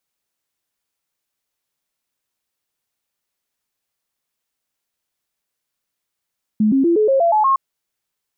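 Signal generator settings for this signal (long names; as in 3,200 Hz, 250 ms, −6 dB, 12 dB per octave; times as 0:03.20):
stepped sweep 214 Hz up, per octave 3, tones 8, 0.12 s, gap 0.00 s −11.5 dBFS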